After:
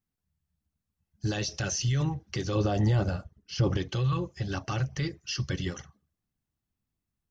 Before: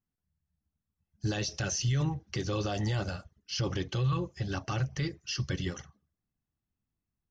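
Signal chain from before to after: 2.55–3.77 tilt shelf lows +5.5 dB, about 1300 Hz; gain +1.5 dB

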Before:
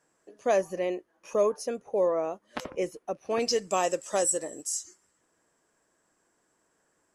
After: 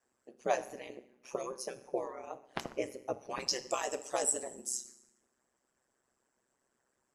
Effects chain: harmonic-percussive split harmonic -18 dB; FDN reverb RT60 0.82 s, low-frequency decay 1.5×, high-frequency decay 0.9×, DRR 10.5 dB; ring modulator 65 Hz

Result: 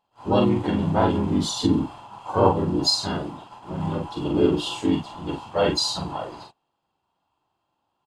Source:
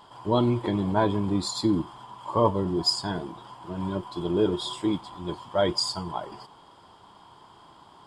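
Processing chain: gate -44 dBFS, range -27 dB; harmoniser -3 st 0 dB, +5 st -14 dB; doubler 44 ms -4 dB; gain -1 dB

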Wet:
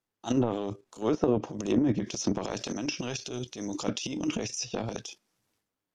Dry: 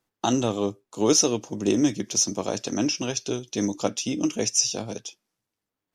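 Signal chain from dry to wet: level quantiser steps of 11 dB; transient shaper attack -11 dB, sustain +11 dB; treble ducked by the level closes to 1100 Hz, closed at -20 dBFS

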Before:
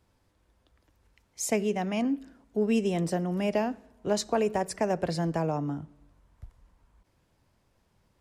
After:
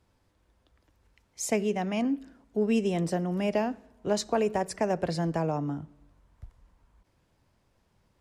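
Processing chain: high shelf 12000 Hz -6 dB

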